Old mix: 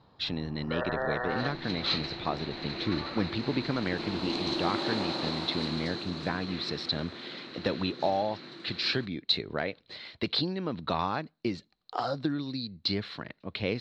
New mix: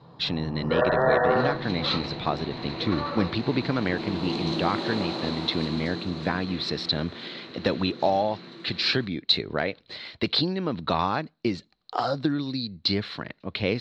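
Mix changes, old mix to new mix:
speech +5.0 dB
first sound +5.5 dB
reverb: on, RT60 0.45 s

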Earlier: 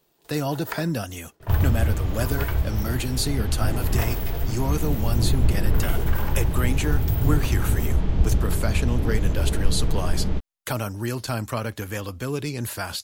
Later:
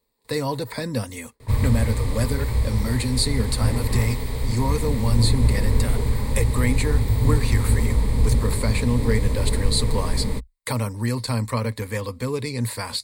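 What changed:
first sound −10.0 dB
second sound: remove high-frequency loss of the air 180 metres
master: add EQ curve with evenly spaced ripples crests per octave 0.96, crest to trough 12 dB

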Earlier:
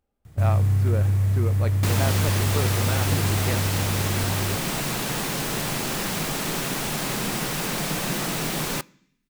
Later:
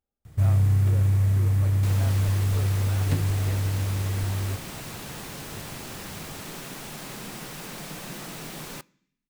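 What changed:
speech −12.0 dB
second sound −11.0 dB

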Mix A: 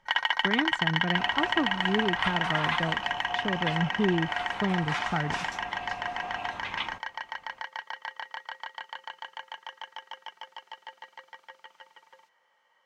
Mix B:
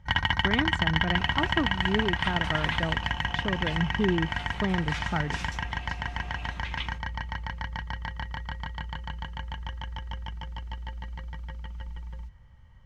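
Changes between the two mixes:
first sound: remove high-pass filter 460 Hz 24 dB per octave
second sound: add parametric band 860 Hz −12.5 dB 1.5 octaves

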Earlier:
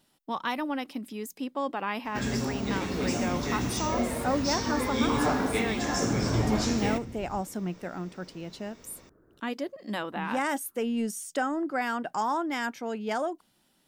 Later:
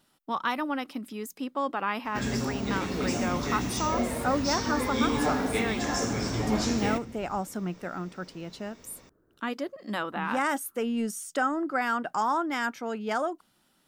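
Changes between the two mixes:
speech: add parametric band 1,300 Hz +6.5 dB 0.49 octaves
second sound −6.0 dB

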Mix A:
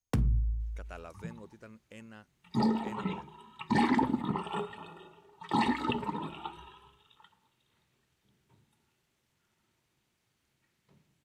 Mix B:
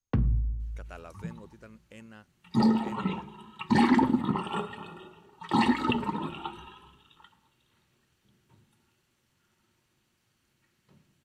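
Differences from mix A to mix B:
first sound: add high-frequency loss of the air 370 metres
reverb: on

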